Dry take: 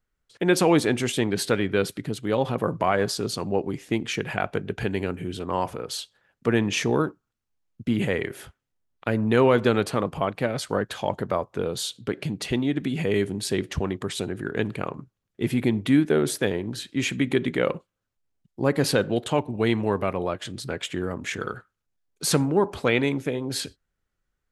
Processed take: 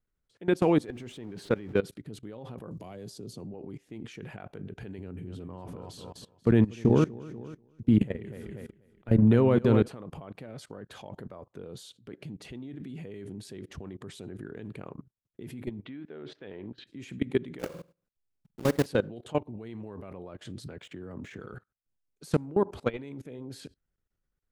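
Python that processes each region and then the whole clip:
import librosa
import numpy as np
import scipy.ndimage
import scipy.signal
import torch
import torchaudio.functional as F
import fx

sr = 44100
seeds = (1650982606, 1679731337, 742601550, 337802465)

y = fx.chain(x, sr, fx.zero_step(step_db=-33.5),
    fx.lowpass(hz=3200.0, slope=6), at=(0.86, 1.8))
y = fx.chain(y, sr, fx.peak_eq(hz=1500.0, db=-13.0, octaves=2.0),
    fx.band_squash(depth_pct=70), at=(2.71, 3.54))
y = fx.chain(y, sr, fx.low_shelf(hz=290.0, db=8.5),
    fx.echo_feedback(ms=243, feedback_pct=36, wet_db=-9.5), at=(4.98, 9.88))
y = fx.chain(y, sr, fx.lowpass(hz=3600.0, slope=24),
    fx.low_shelf(hz=340.0, db=-10.5), at=(15.8, 16.87))
y = fx.chain(y, sr, fx.block_float(bits=3),
    fx.room_flutter(wall_m=8.0, rt60_s=0.33), at=(17.59, 18.86))
y = fx.chain(y, sr, fx.median_filter(points=3),
    fx.high_shelf(hz=4900.0, db=-6.0),
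    fx.band_squash(depth_pct=40), at=(20.66, 21.4))
y = fx.low_shelf(y, sr, hz=210.0, db=-5.0)
y = fx.level_steps(y, sr, step_db=21)
y = fx.low_shelf(y, sr, hz=480.0, db=11.5)
y = y * librosa.db_to_amplitude(-7.0)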